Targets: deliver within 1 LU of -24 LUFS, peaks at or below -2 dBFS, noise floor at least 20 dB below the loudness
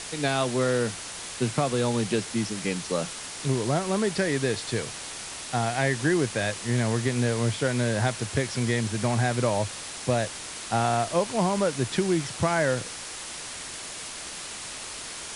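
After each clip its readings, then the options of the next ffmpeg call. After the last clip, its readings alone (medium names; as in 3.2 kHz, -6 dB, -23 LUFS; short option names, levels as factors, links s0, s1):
noise floor -38 dBFS; noise floor target -47 dBFS; loudness -27.0 LUFS; peak level -9.5 dBFS; loudness target -24.0 LUFS
-> -af "afftdn=nr=9:nf=-38"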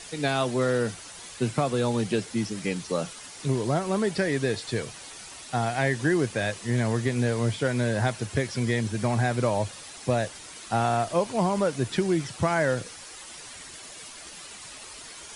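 noise floor -44 dBFS; noise floor target -47 dBFS
-> -af "afftdn=nr=6:nf=-44"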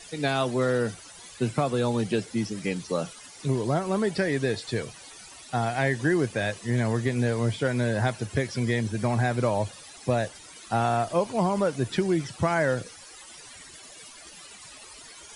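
noise floor -47 dBFS; loudness -27.0 LUFS; peak level -9.5 dBFS; loudness target -24.0 LUFS
-> -af "volume=1.41"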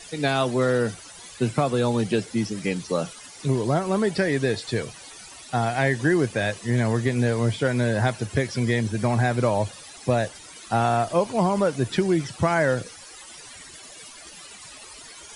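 loudness -24.0 LUFS; peak level -6.5 dBFS; noise floor -44 dBFS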